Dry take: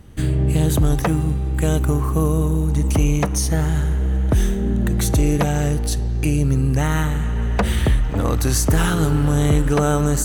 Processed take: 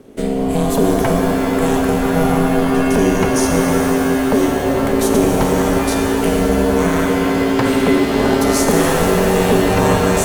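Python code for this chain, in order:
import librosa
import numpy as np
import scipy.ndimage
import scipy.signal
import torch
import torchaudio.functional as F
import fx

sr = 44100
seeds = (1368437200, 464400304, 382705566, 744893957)

y = x * np.sin(2.0 * np.pi * 330.0 * np.arange(len(x)) / sr)
y = fx.rev_shimmer(y, sr, seeds[0], rt60_s=3.7, semitones=7, shimmer_db=-2, drr_db=1.5)
y = F.gain(torch.from_numpy(y), 3.0).numpy()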